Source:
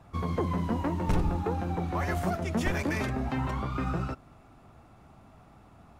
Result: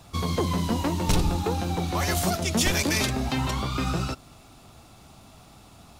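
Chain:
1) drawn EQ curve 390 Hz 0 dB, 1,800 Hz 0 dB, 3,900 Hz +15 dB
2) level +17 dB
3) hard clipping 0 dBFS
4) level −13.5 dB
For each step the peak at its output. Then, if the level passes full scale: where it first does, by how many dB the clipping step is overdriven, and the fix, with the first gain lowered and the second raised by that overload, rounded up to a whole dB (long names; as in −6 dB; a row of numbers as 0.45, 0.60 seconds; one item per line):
−13.0, +4.0, 0.0, −13.5 dBFS
step 2, 4.0 dB
step 2 +13 dB, step 4 −9.5 dB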